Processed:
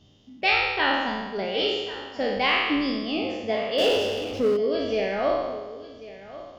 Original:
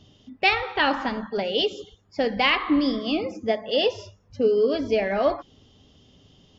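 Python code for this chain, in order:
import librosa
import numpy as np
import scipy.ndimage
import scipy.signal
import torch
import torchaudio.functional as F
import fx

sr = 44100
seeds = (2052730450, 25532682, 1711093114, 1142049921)

y = fx.spec_trails(x, sr, decay_s=1.25)
y = y + 10.0 ** (-16.5 / 20.0) * np.pad(y, (int(1090 * sr / 1000.0), 0))[:len(y)]
y = fx.power_curve(y, sr, exponent=0.7, at=(3.78, 4.57))
y = F.gain(torch.from_numpy(y), -5.5).numpy()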